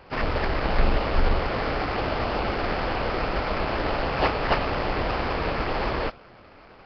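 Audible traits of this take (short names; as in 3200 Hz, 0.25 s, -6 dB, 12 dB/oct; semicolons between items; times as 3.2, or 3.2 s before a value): aliases and images of a low sample rate 3700 Hz, jitter 20%; Nellymoser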